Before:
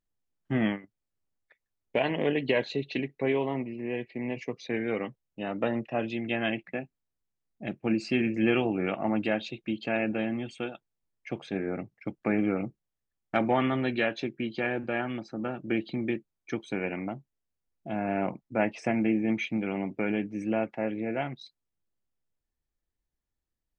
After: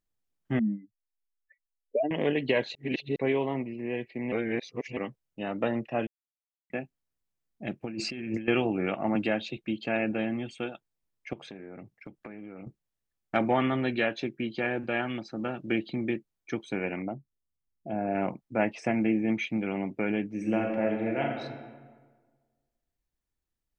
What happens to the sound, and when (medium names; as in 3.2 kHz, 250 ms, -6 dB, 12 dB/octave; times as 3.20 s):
0.59–2.11 s: spectral contrast enhancement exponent 3.4
2.75–3.16 s: reverse
4.32–4.97 s: reverse
6.07–6.70 s: mute
7.81–8.48 s: compressor with a negative ratio -35 dBFS
9.15–9.57 s: three bands compressed up and down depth 40%
11.33–12.67 s: compression 12:1, threshold -39 dBFS
14.83–15.76 s: peaking EQ 3.7 kHz +5.5 dB 1.4 oct
17.02–18.15 s: resonances exaggerated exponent 1.5
20.29–21.41 s: reverb throw, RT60 1.5 s, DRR 1.5 dB